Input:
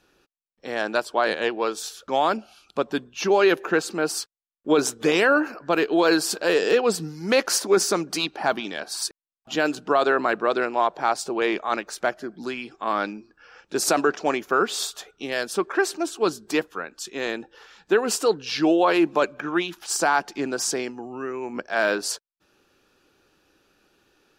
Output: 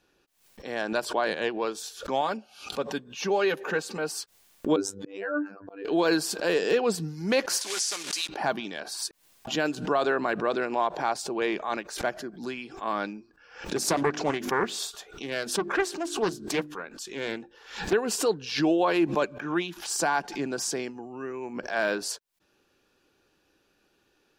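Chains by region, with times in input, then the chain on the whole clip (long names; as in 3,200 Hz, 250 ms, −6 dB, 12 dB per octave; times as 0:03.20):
0:02.21–0:04.19: high-pass filter 55 Hz + low-shelf EQ 160 Hz −8.5 dB + notch comb filter 340 Hz
0:04.76–0:05.85: expanding power law on the bin magnitudes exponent 1.6 + phases set to zero 98.3 Hz + volume swells 430 ms
0:07.61–0:08.29: one scale factor per block 3 bits + meter weighting curve ITU-R 468 + downward compressor 2 to 1, threshold −28 dBFS
0:13.76–0:17.93: mains-hum notches 50/100/150/200/250/300/350 Hz + highs frequency-modulated by the lows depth 0.36 ms
whole clip: notch filter 1,300 Hz, Q 12; dynamic equaliser 150 Hz, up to +6 dB, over −41 dBFS, Q 1.4; background raised ahead of every attack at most 110 dB per second; level −5 dB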